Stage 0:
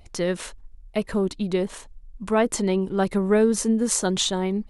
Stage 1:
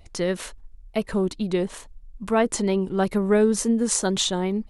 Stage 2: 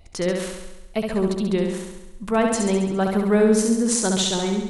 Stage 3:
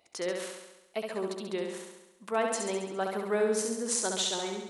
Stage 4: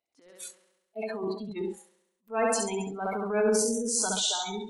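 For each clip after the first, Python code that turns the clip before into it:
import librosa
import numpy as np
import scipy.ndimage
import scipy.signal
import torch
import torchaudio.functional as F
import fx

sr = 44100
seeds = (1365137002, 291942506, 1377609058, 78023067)

y1 = fx.wow_flutter(x, sr, seeds[0], rate_hz=2.1, depth_cents=48.0)
y2 = fx.room_flutter(y1, sr, wall_m=11.7, rt60_s=0.98)
y3 = scipy.signal.sosfilt(scipy.signal.butter(2, 390.0, 'highpass', fs=sr, output='sos'), y2)
y3 = F.gain(torch.from_numpy(y3), -7.0).numpy()
y4 = fx.transient(y3, sr, attack_db=-10, sustain_db=6)
y4 = fx.noise_reduce_blind(y4, sr, reduce_db=25)
y4 = F.gain(torch.from_numpy(y4), 4.0).numpy()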